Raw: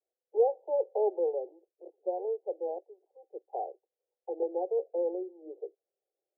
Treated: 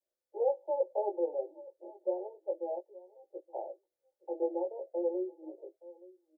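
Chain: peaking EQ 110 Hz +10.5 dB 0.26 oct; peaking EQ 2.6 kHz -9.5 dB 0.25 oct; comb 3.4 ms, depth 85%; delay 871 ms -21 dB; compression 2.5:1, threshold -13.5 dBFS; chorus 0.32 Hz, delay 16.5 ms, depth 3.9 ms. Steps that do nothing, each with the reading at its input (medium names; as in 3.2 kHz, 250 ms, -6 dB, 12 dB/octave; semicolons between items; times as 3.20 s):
peaking EQ 110 Hz: input has nothing below 300 Hz; peaking EQ 2.6 kHz: input has nothing above 910 Hz; compression, threshold -13.5 dBFS: peak at its input -16.0 dBFS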